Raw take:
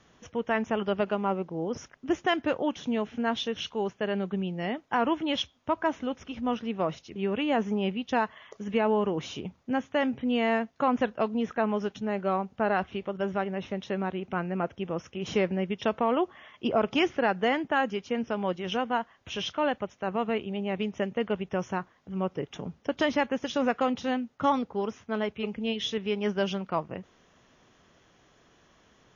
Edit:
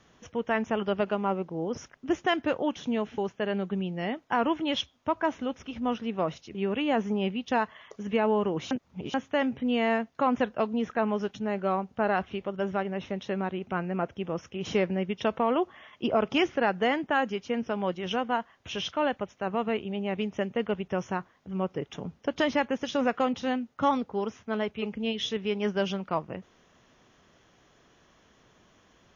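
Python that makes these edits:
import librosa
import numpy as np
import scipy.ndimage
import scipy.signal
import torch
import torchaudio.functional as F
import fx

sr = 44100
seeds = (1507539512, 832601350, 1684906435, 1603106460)

y = fx.edit(x, sr, fx.cut(start_s=3.18, length_s=0.61),
    fx.reverse_span(start_s=9.32, length_s=0.43), tone=tone)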